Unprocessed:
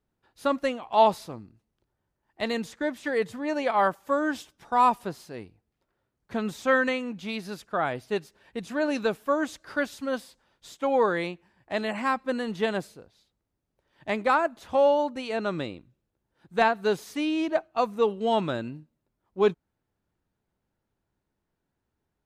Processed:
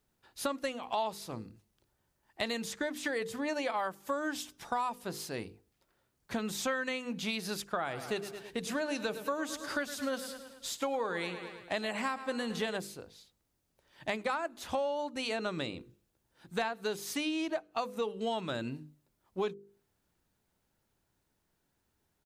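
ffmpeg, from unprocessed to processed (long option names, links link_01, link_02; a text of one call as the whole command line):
ffmpeg -i in.wav -filter_complex "[0:a]asplit=3[link_01][link_02][link_03];[link_01]afade=type=out:start_time=7.85:duration=0.02[link_04];[link_02]aecho=1:1:108|216|324|432|540:0.178|0.0996|0.0558|0.0312|0.0175,afade=type=in:start_time=7.85:duration=0.02,afade=type=out:start_time=12.76:duration=0.02[link_05];[link_03]afade=type=in:start_time=12.76:duration=0.02[link_06];[link_04][link_05][link_06]amix=inputs=3:normalize=0,highshelf=frequency=2900:gain=9.5,bandreject=frequency=50:width_type=h:width=6,bandreject=frequency=100:width_type=h:width=6,bandreject=frequency=150:width_type=h:width=6,bandreject=frequency=200:width_type=h:width=6,bandreject=frequency=250:width_type=h:width=6,bandreject=frequency=300:width_type=h:width=6,bandreject=frequency=350:width_type=h:width=6,bandreject=frequency=400:width_type=h:width=6,bandreject=frequency=450:width_type=h:width=6,bandreject=frequency=500:width_type=h:width=6,acompressor=threshold=-33dB:ratio=6,volume=1.5dB" out.wav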